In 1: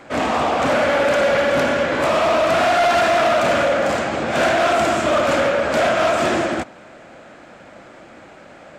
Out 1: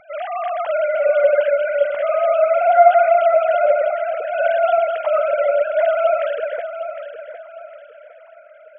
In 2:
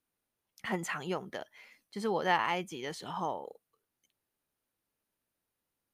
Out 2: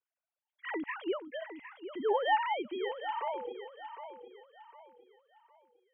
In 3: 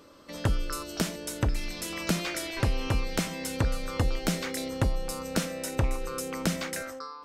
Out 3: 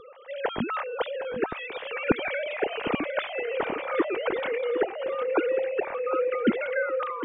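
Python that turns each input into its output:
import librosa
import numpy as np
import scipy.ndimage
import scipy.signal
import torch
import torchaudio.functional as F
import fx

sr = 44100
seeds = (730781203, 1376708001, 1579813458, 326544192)

y = fx.sine_speech(x, sr)
y = fx.low_shelf(y, sr, hz=240.0, db=10.0)
y = fx.echo_feedback(y, sr, ms=758, feedback_pct=34, wet_db=-10.5)
y = y * librosa.db_to_amplitude(-1.0)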